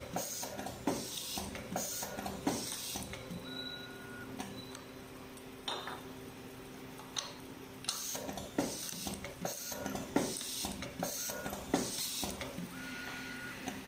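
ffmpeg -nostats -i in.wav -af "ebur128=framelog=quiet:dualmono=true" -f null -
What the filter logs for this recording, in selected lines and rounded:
Integrated loudness:
  I:         -36.8 LUFS
  Threshold: -46.8 LUFS
Loudness range:
  LRA:         7.0 LU
  Threshold: -57.0 LUFS
  LRA low:   -41.5 LUFS
  LRA high:  -34.5 LUFS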